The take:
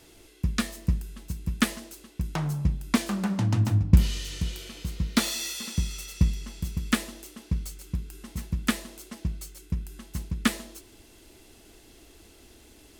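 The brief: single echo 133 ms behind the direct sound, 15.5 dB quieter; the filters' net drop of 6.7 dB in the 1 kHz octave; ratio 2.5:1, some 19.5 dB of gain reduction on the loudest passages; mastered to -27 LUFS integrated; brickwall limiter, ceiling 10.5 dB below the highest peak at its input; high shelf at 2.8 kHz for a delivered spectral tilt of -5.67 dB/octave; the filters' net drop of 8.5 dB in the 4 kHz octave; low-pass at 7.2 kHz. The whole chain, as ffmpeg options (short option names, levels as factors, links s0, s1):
-af "lowpass=7200,equalizer=f=1000:t=o:g=-7.5,highshelf=f=2800:g=-7.5,equalizer=f=4000:t=o:g=-4,acompressor=threshold=0.00794:ratio=2.5,alimiter=level_in=2.66:limit=0.0631:level=0:latency=1,volume=0.376,aecho=1:1:133:0.168,volume=8.41"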